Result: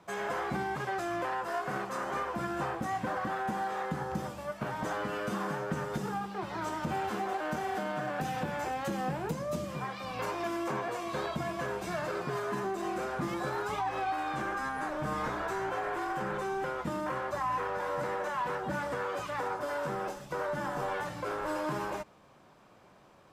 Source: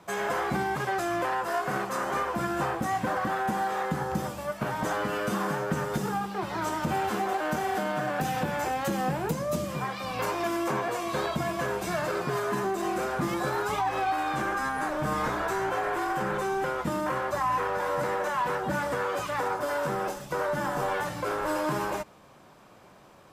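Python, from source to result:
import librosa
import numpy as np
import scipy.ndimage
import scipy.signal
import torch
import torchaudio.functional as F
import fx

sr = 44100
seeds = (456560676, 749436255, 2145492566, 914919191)

y = fx.high_shelf(x, sr, hz=9400.0, db=-8.5)
y = F.gain(torch.from_numpy(y), -5.0).numpy()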